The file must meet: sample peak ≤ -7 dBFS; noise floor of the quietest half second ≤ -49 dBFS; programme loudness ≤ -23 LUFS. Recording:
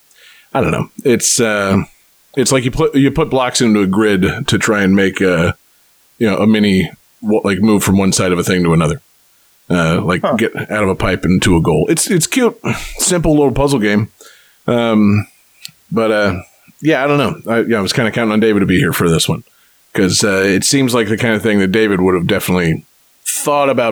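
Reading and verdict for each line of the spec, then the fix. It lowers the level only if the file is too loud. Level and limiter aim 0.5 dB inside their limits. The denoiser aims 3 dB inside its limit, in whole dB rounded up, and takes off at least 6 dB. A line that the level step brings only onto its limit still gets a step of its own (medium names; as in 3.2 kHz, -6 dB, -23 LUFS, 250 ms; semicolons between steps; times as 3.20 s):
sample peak -3.0 dBFS: fail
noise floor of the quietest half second -52 dBFS: pass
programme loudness -13.5 LUFS: fail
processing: trim -10 dB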